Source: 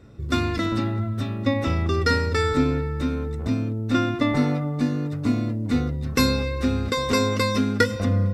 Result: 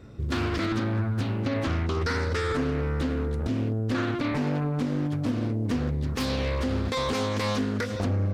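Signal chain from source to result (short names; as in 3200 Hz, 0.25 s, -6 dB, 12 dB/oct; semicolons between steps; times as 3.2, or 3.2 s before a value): compressor 3:1, threshold -24 dBFS, peak gain reduction 8.5 dB; limiter -19.5 dBFS, peak gain reduction 8.5 dB; Doppler distortion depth 0.49 ms; gain +1.5 dB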